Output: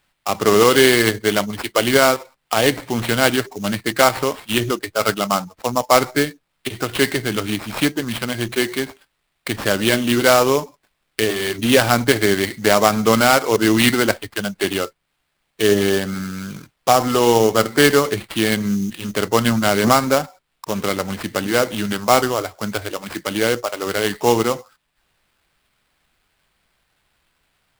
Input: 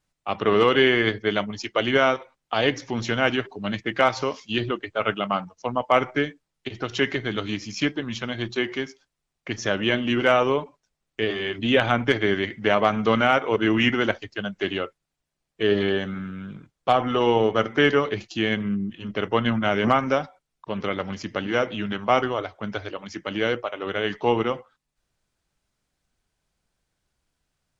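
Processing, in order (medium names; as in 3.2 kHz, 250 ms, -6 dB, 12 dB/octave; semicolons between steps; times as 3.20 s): sample-rate reducer 6.3 kHz, jitter 20%; tape noise reduction on one side only encoder only; trim +5.5 dB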